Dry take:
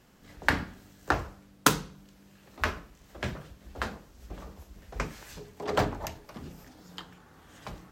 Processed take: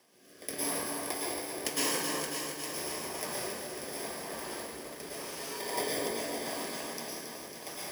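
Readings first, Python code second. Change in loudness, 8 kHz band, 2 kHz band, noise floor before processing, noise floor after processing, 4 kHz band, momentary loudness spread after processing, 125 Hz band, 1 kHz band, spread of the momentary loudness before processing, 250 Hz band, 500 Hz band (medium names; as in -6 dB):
-3.0 dB, +5.0 dB, -6.0 dB, -58 dBFS, -54 dBFS, +2.0 dB, 9 LU, -13.0 dB, -5.0 dB, 21 LU, -2.5 dB, +0.5 dB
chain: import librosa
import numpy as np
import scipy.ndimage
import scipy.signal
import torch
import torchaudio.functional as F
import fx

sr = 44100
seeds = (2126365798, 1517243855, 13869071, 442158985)

p1 = fx.bit_reversed(x, sr, seeds[0], block=32)
p2 = fx.high_shelf(p1, sr, hz=12000.0, db=-10.5)
p3 = fx.over_compress(p2, sr, threshold_db=-40.0, ratio=-1.0)
p4 = p2 + F.gain(torch.from_numpy(p3), 1.0).numpy()
p5 = scipy.signal.sosfilt(scipy.signal.butter(2, 470.0, 'highpass', fs=sr, output='sos'), p4)
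p6 = p5 + fx.echo_alternate(p5, sr, ms=287, hz=1700.0, feedback_pct=60, wet_db=-5, dry=0)
p7 = fx.rev_plate(p6, sr, seeds[1], rt60_s=1.6, hf_ratio=0.8, predelay_ms=95, drr_db=-6.5)
p8 = fx.rotary(p7, sr, hz=0.85)
p9 = fx.echo_crushed(p8, sr, ms=274, feedback_pct=80, bits=8, wet_db=-7)
y = F.gain(torch.from_numpy(p9), -4.5).numpy()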